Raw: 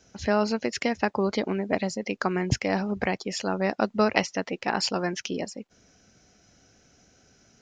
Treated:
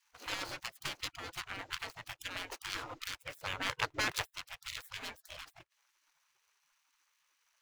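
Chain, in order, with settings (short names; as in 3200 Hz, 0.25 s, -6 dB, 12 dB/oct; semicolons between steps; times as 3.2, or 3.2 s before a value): median filter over 25 samples; 3.18–4.23 graphic EQ 250/500/2000 Hz +12/-11/+5 dB; spectral gate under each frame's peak -25 dB weak; gain +3.5 dB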